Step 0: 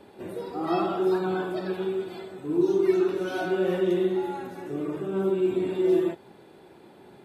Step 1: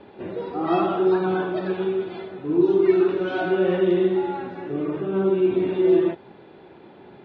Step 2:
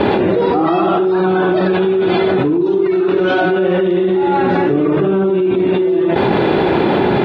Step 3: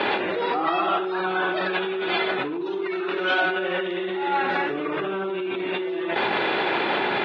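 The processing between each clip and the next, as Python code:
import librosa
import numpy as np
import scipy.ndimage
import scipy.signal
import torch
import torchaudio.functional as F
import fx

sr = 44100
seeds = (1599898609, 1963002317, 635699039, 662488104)

y1 = scipy.signal.sosfilt(scipy.signal.butter(4, 3600.0, 'lowpass', fs=sr, output='sos'), x)
y1 = y1 * librosa.db_to_amplitude(4.5)
y2 = fx.env_flatten(y1, sr, amount_pct=100)
y2 = y2 * librosa.db_to_amplitude(-1.0)
y3 = fx.bandpass_q(y2, sr, hz=2400.0, q=0.78)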